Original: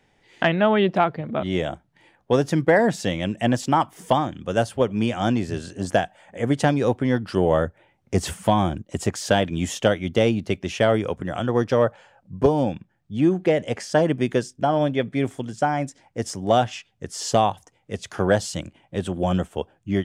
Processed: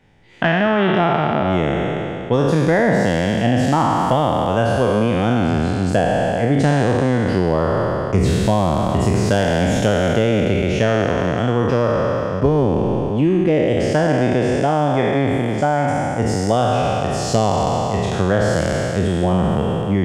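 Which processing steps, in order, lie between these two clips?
peak hold with a decay on every bin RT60 2.78 s
bass and treble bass +7 dB, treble −5 dB
downward compressor 2.5 to 1, threshold −16 dBFS, peak gain reduction 6 dB
level +2 dB

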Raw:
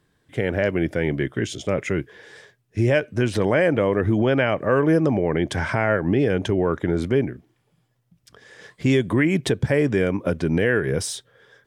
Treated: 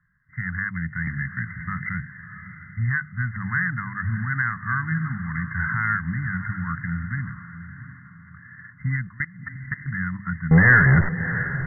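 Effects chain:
samples sorted by size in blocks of 8 samples
elliptic band-stop filter 180–1,300 Hz, stop band 60 dB
tilt shelving filter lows −5 dB, about 1,300 Hz
mains-hum notches 50/100/150/200 Hz
0:09.07–0:09.86: output level in coarse steps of 23 dB
0:10.51–0:11.09: power curve on the samples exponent 0.5
linear-phase brick-wall low-pass 2,100 Hz
feedback delay with all-pass diffusion 658 ms, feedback 41%, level −11.5 dB
0:01.07–0:01.90: multiband upward and downward compressor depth 70%
level +4.5 dB

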